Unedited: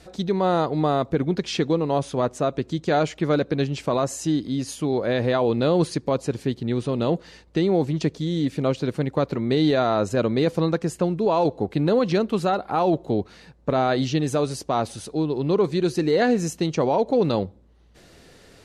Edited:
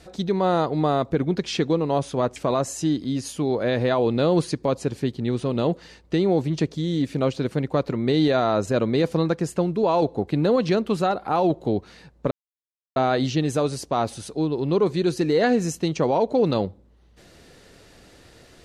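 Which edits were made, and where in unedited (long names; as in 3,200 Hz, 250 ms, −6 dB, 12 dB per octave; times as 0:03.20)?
0:02.36–0:03.79: remove
0:13.74: splice in silence 0.65 s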